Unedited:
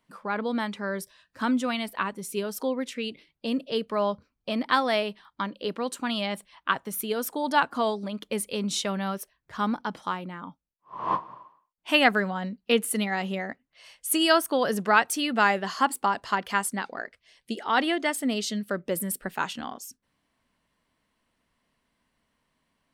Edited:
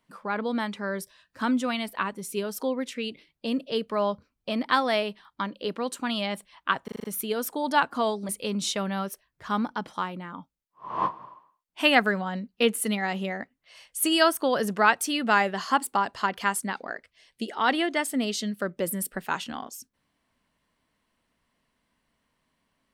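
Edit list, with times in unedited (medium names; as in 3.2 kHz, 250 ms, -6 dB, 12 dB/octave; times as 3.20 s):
6.84 s: stutter 0.04 s, 6 plays
8.09–8.38 s: delete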